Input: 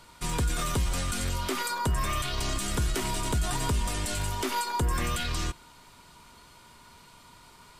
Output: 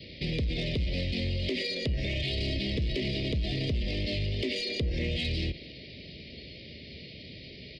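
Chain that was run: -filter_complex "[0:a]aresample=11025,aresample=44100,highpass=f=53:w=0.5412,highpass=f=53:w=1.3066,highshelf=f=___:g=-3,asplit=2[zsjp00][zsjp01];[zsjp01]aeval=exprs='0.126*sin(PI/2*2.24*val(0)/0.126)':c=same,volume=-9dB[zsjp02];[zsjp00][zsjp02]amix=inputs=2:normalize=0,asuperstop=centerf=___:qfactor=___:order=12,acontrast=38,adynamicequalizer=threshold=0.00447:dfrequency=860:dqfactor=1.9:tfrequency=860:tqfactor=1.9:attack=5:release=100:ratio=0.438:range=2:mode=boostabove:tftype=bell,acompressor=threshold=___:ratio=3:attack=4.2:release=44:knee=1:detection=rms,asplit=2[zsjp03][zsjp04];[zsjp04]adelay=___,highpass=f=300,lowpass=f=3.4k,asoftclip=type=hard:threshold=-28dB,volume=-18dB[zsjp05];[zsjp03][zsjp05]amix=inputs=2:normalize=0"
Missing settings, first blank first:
3.1k, 1100, 0.81, -31dB, 240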